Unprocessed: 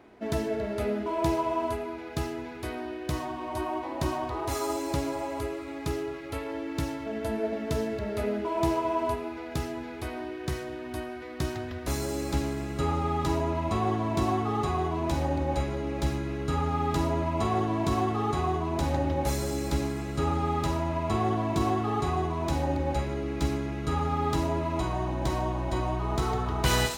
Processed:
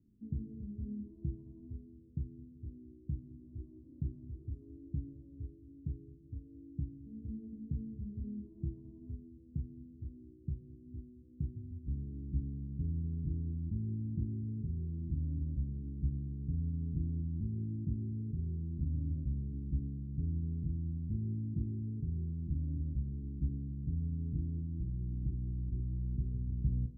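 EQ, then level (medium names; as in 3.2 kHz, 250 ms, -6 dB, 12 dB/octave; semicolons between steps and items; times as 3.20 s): inverse Chebyshev low-pass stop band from 720 Hz, stop band 60 dB; -4.5 dB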